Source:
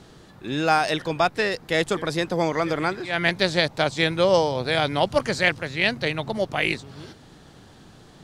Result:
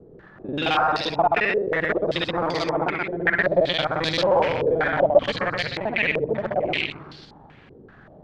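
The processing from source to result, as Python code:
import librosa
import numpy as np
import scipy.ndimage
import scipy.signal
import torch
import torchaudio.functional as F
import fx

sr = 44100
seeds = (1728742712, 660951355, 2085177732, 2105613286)

p1 = fx.local_reverse(x, sr, ms=44.0)
p2 = fx.echo_feedback(p1, sr, ms=127, feedback_pct=25, wet_db=-3.5)
p3 = (np.mod(10.0 ** (14.0 / 20.0) * p2 + 1.0, 2.0) - 1.0) / 10.0 ** (14.0 / 20.0)
p4 = p2 + (p3 * librosa.db_to_amplitude(-6.5))
p5 = fx.filter_held_lowpass(p4, sr, hz=5.2, low_hz=450.0, high_hz=4500.0)
y = p5 * librosa.db_to_amplitude(-6.5)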